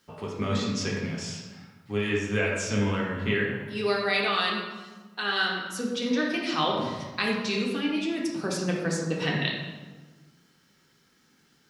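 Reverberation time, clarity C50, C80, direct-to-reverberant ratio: 1.3 s, 1.5 dB, 4.0 dB, −3.0 dB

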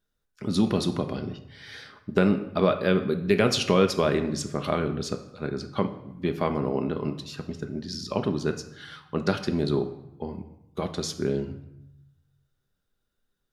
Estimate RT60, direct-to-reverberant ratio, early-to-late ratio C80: 0.85 s, 6.0 dB, 14.0 dB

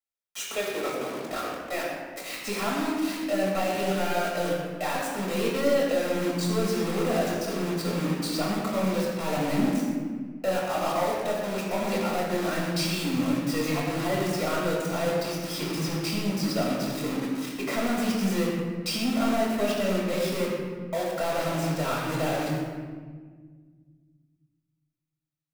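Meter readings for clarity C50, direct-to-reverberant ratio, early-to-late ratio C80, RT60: 0.5 dB, −5.5 dB, 1.5 dB, 1.6 s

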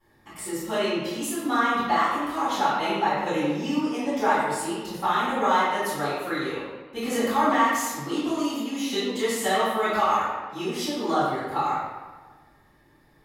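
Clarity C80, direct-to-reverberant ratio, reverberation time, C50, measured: 1.0 dB, −17.0 dB, 1.4 s, −2.5 dB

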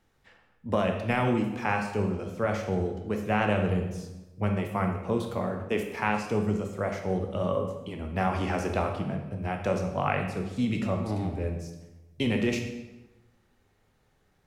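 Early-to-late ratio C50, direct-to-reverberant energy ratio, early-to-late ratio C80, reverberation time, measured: 6.0 dB, 3.5 dB, 8.0 dB, 1.1 s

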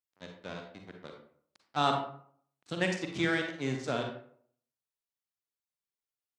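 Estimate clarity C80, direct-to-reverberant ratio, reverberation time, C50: 8.5 dB, 2.5 dB, 0.55 s, 4.5 dB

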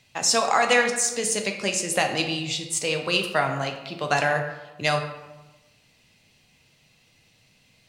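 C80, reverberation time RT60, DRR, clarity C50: 9.5 dB, 1.1 s, 3.5 dB, 7.0 dB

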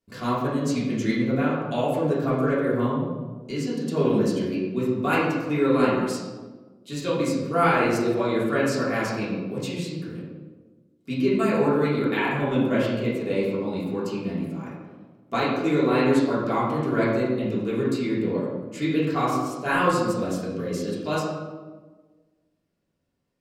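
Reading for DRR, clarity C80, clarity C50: −9.0 dB, 3.0 dB, 0.5 dB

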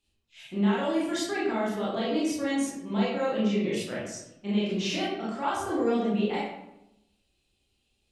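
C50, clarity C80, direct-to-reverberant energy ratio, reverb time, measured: 0.5 dB, 4.0 dB, −7.5 dB, 0.85 s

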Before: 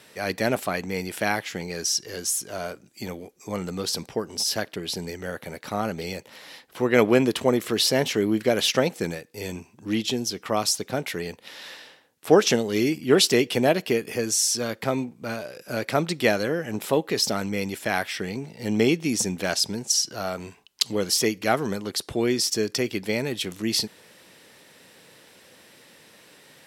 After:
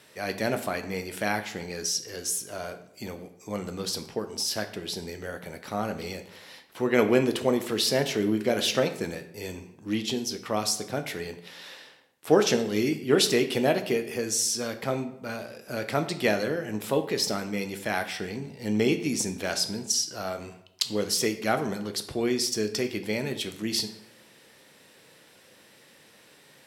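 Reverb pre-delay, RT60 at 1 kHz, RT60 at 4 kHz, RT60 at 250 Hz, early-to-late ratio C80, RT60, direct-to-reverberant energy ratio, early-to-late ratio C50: 8 ms, 0.75 s, 0.55 s, 0.85 s, 14.5 dB, 0.75 s, 7.5 dB, 11.5 dB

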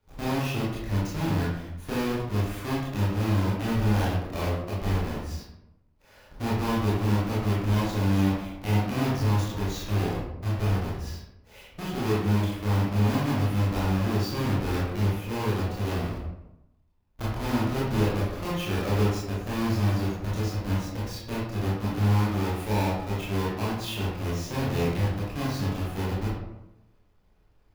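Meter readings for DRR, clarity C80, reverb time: −7.5 dB, 4.0 dB, 0.90 s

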